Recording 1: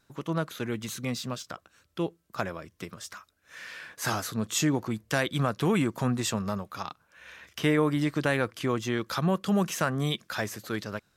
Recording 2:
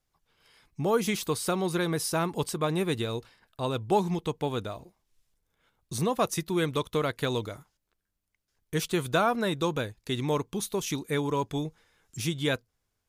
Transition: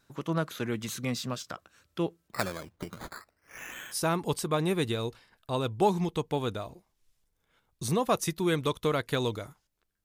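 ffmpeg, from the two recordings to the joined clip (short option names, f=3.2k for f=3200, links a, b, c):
-filter_complex "[0:a]asettb=1/sr,asplit=3[a][b][c];[a]atrim=end=2.284[d];[b]atrim=start=2.28:end=3.97,asetpts=PTS-STARTPTS,afade=t=in:d=0.004:c=qsin,afade=t=out:st=1.686:d=0.004:c=qsin,acrusher=samples=13:mix=1:aa=0.000001:lfo=1:lforange=7.8:lforate=0.47[e];[c]atrim=start=3.966[f];[d][e]acrossfade=d=0.004:c1=hsin:c2=qsin[g];[g][f]acrossfade=d=0.004:c1=qsin:c2=hsin,apad=whole_dur=10.04,atrim=end=10.04,atrim=end=3.97,asetpts=PTS-STARTPTS[h];[1:a]atrim=start=2.01:end=8.14,asetpts=PTS-STARTPTS[i];[h][i]acrossfade=d=0.06:c1=tri:c2=tri"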